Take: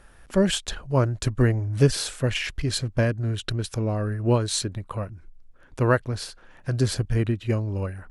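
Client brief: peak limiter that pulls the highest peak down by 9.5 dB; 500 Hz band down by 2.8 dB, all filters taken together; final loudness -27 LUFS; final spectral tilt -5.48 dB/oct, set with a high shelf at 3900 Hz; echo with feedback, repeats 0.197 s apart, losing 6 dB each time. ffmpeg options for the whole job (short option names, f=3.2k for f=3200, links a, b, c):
-af "equalizer=f=500:t=o:g=-3.5,highshelf=f=3.9k:g=-5,alimiter=limit=-16.5dB:level=0:latency=1,aecho=1:1:197|394|591|788|985|1182:0.501|0.251|0.125|0.0626|0.0313|0.0157,volume=0.5dB"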